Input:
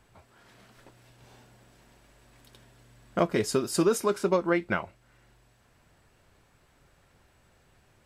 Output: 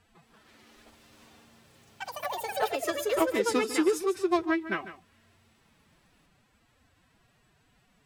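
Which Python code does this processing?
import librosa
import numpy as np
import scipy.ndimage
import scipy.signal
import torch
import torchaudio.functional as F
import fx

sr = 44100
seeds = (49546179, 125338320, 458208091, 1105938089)

y = fx.peak_eq(x, sr, hz=3100.0, db=4.0, octaves=1.3)
y = fx.pitch_keep_formants(y, sr, semitones=11.0)
y = y + 10.0 ** (-12.5 / 20.0) * np.pad(y, (int(148 * sr / 1000.0), 0))[:len(y)]
y = fx.echo_pitch(y, sr, ms=224, semitones=5, count=3, db_per_echo=-3.0)
y = fx.upward_expand(y, sr, threshold_db=-27.0, expansion=1.5)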